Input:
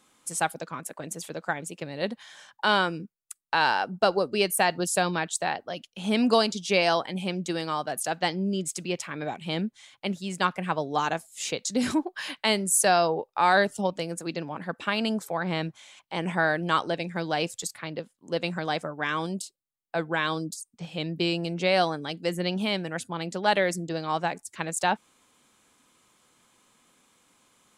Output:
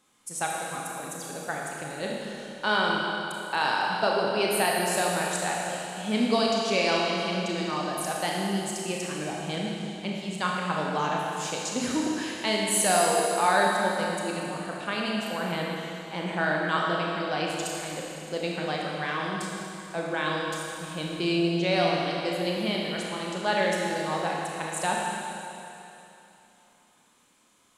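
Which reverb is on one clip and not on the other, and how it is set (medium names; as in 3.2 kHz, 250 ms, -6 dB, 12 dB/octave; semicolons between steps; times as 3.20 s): Schroeder reverb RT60 3 s, combs from 26 ms, DRR -2.5 dB; trim -4.5 dB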